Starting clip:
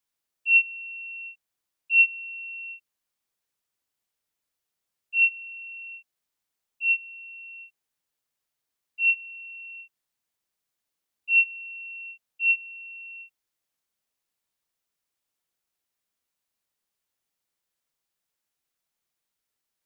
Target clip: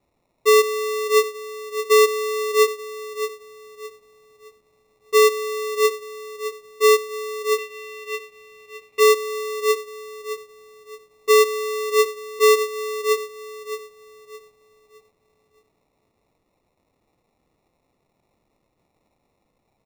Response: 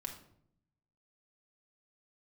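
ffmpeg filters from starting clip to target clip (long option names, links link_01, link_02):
-filter_complex "[0:a]asplit=2[link_01][link_02];[link_02]adelay=616,lowpass=frequency=2600:poles=1,volume=-6dB,asplit=2[link_03][link_04];[link_04]adelay=616,lowpass=frequency=2600:poles=1,volume=0.44,asplit=2[link_05][link_06];[link_06]adelay=616,lowpass=frequency=2600:poles=1,volume=0.44,asplit=2[link_07][link_08];[link_08]adelay=616,lowpass=frequency=2600:poles=1,volume=0.44,asplit=2[link_09][link_10];[link_10]adelay=616,lowpass=frequency=2600:poles=1,volume=0.44[link_11];[link_03][link_05][link_07][link_09][link_11]amix=inputs=5:normalize=0[link_12];[link_01][link_12]amix=inputs=2:normalize=0,acrusher=samples=28:mix=1:aa=0.000001,asettb=1/sr,asplit=3[link_13][link_14][link_15];[link_13]atrim=end=7.584[link_16];[link_14]atrim=start=7.58:end=9,asetpts=PTS-STARTPTS,afade=type=in:duration=0.004:curve=qsin,afade=type=out:start_time=1.416:duration=0.004:curve=qsin,equalizer=frequency=2500:width_type=o:width=0.85:gain=12[link_17];[link_15]atrim=start=8.996[link_18];[link_16][link_17]acrossfade=duration=0.004:curve1=hsin:curve2=qsin[link_19];[link_19][link_18]acrossfade=duration=0.004:curve1=qsin:curve2=hsin,alimiter=level_in=21.5dB:limit=-1dB:release=50:level=0:latency=1,volume=-8dB"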